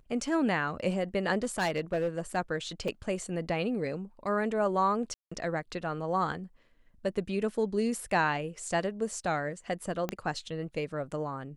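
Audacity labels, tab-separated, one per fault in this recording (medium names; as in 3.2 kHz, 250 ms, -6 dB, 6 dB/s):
1.380000	2.370000	clipped -24.5 dBFS
2.880000	2.880000	dropout 3.6 ms
5.140000	5.320000	dropout 175 ms
10.090000	10.090000	pop -17 dBFS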